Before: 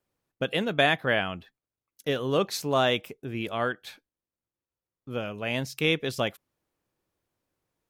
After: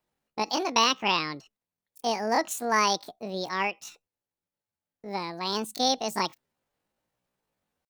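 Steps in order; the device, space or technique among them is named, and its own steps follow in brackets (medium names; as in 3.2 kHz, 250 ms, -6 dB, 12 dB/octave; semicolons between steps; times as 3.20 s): chipmunk voice (pitch shift +8.5 st)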